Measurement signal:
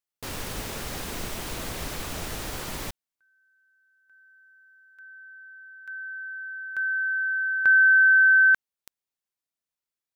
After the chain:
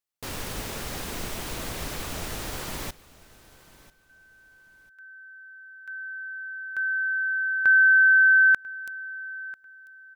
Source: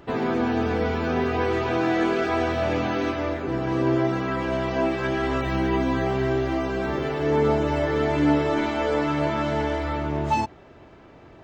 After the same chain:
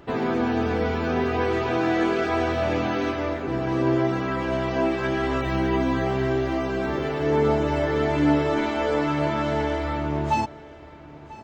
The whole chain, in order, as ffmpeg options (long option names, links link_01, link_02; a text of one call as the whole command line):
ffmpeg -i in.wav -af "aecho=1:1:993|1986:0.1|0.025" out.wav